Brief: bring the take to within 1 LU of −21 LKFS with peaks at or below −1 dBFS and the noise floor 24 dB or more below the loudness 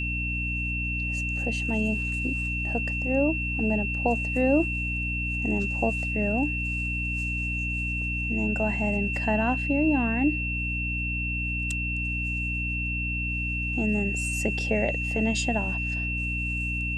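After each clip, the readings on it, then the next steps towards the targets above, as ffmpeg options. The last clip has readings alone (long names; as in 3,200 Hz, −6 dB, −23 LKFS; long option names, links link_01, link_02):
mains hum 60 Hz; hum harmonics up to 300 Hz; level of the hum −29 dBFS; interfering tone 2,700 Hz; level of the tone −29 dBFS; integrated loudness −26.5 LKFS; sample peak −10.0 dBFS; target loudness −21.0 LKFS
→ -af "bandreject=frequency=60:width_type=h:width=4,bandreject=frequency=120:width_type=h:width=4,bandreject=frequency=180:width_type=h:width=4,bandreject=frequency=240:width_type=h:width=4,bandreject=frequency=300:width_type=h:width=4"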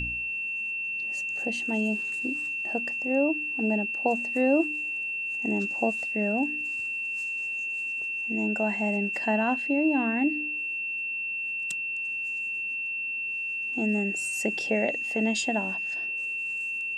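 mains hum none found; interfering tone 2,700 Hz; level of the tone −29 dBFS
→ -af "bandreject=frequency=2700:width=30"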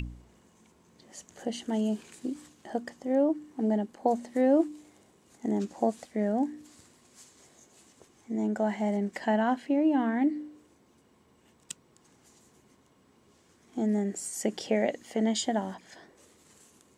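interfering tone none found; integrated loudness −29.5 LKFS; sample peak −11.5 dBFS; target loudness −21.0 LKFS
→ -af "volume=8.5dB"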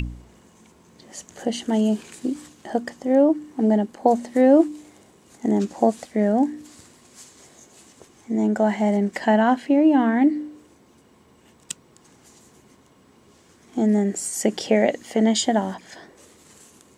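integrated loudness −21.0 LKFS; sample peak −3.0 dBFS; background noise floor −55 dBFS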